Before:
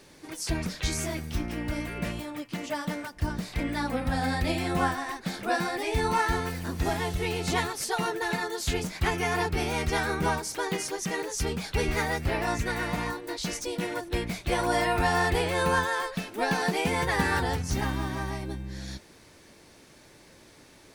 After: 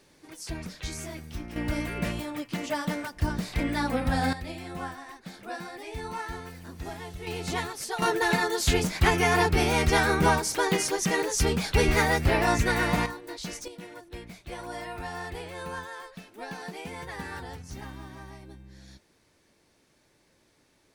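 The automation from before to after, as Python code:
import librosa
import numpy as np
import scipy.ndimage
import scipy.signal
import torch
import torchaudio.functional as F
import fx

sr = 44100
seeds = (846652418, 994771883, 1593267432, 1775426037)

y = fx.gain(x, sr, db=fx.steps((0.0, -6.5), (1.56, 2.0), (4.33, -10.0), (7.27, -3.5), (8.02, 5.0), (13.06, -4.5), (13.68, -12.0)))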